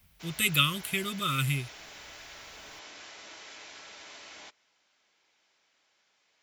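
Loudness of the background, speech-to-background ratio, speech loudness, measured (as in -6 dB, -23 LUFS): -46.0 LUFS, 18.0 dB, -28.0 LUFS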